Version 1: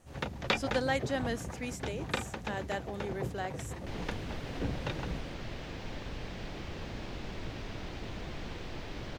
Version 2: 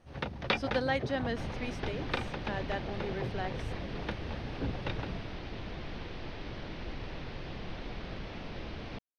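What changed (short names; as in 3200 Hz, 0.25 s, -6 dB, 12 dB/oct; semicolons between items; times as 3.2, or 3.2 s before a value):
second sound: entry -2.50 s; master: add polynomial smoothing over 15 samples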